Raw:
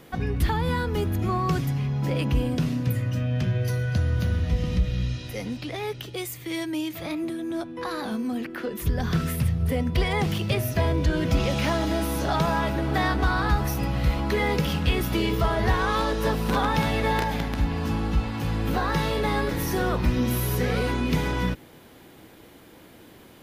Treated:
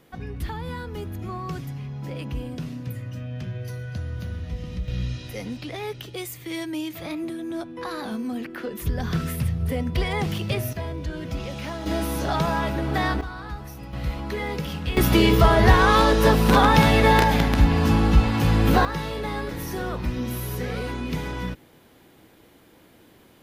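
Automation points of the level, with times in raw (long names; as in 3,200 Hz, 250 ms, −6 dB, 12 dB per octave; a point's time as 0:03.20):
−7.5 dB
from 0:04.88 −1 dB
from 0:10.73 −8 dB
from 0:11.86 0 dB
from 0:13.21 −12 dB
from 0:13.93 −5 dB
from 0:14.97 +7.5 dB
from 0:18.85 −4.5 dB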